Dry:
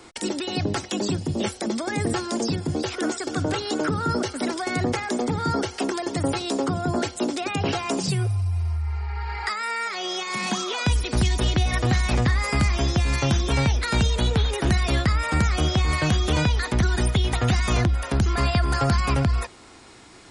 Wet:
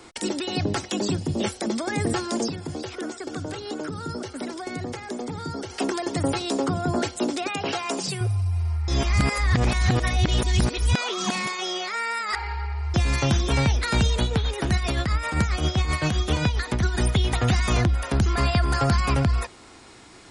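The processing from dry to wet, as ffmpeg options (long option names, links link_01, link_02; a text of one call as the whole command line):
ffmpeg -i in.wav -filter_complex "[0:a]asettb=1/sr,asplit=3[link_01][link_02][link_03];[link_01]atrim=end=2.484[link_04];[link_02]atrim=start=2.48:end=5.7,asetpts=PTS-STARTPTS,afade=type=in:duration=0.004:curve=qsin,afade=type=out:start_time=3.216:duration=0.004:curve=qsin,acrossover=split=600|3200[link_05][link_06][link_07];[link_05]acompressor=threshold=-31dB:ratio=4[link_08];[link_06]acompressor=threshold=-40dB:ratio=4[link_09];[link_07]acompressor=threshold=-44dB:ratio=4[link_10];[link_08][link_09][link_10]amix=inputs=3:normalize=0[link_11];[link_03]atrim=start=5.696[link_12];[link_04][link_11]acrossfade=duration=0.004:curve1=hsin:curve2=qsin[link_13];[link_13][link_12]acrossfade=duration=0.004:curve1=qsin:curve2=hsin,asettb=1/sr,asplit=3[link_14][link_15][link_16];[link_14]atrim=end=7.474[link_17];[link_15]atrim=start=7.47:end=8.21,asetpts=PTS-STARTPTS,afade=type=in:duration=0.004:curve=qsin,afade=type=out:start_time=0.736:duration=0.004:curve=qsin,highpass=frequency=390:poles=1[link_18];[link_16]atrim=start=8.206[link_19];[link_17][link_18]acrossfade=duration=0.004:curve1=hsin:curve2=qsin[link_20];[link_20][link_19]acrossfade=duration=0.004:curve1=qsin:curve2=hsin,asettb=1/sr,asplit=3[link_21][link_22][link_23];[link_21]atrim=end=14.224[link_24];[link_22]atrim=start=14.22:end=17,asetpts=PTS-STARTPTS,afade=type=in:duration=0.004:curve=qsin,afade=type=out:start_time=2.776:duration=0.004:curve=qsin,tremolo=f=7.6:d=0.51[link_25];[link_23]atrim=start=16.996[link_26];[link_24][link_25]acrossfade=duration=0.004:curve1=hsin:curve2=qsin[link_27];[link_27][link_26]acrossfade=duration=0.004:curve1=qsin:curve2=hsin,asplit=3[link_28][link_29][link_30];[link_28]atrim=end=8.882[link_31];[link_29]atrim=start=8.878:end=12.942,asetpts=PTS-STARTPTS,areverse[link_32];[link_30]atrim=start=12.938[link_33];[link_31][link_32]acrossfade=duration=0.004:curve1=hsin:curve2=hsin[link_34];[link_34][link_33]acrossfade=duration=0.004:curve1=hsin:curve2=hsin" out.wav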